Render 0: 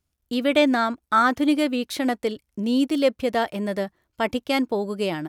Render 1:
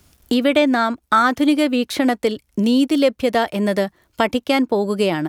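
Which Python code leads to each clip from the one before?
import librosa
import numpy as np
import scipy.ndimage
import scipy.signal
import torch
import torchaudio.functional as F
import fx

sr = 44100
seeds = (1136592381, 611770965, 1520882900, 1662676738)

y = fx.band_squash(x, sr, depth_pct=70)
y = y * librosa.db_to_amplitude(4.5)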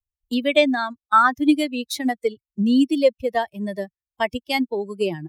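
y = fx.bin_expand(x, sr, power=2.0)
y = fx.band_widen(y, sr, depth_pct=70)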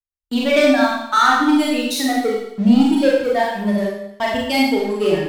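y = fx.leveller(x, sr, passes=3)
y = fx.rev_schroeder(y, sr, rt60_s=0.79, comb_ms=30, drr_db=-4.0)
y = y * librosa.db_to_amplitude(-9.0)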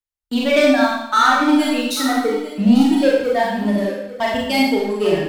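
y = x + 10.0 ** (-15.0 / 20.0) * np.pad(x, (int(843 * sr / 1000.0), 0))[:len(x)]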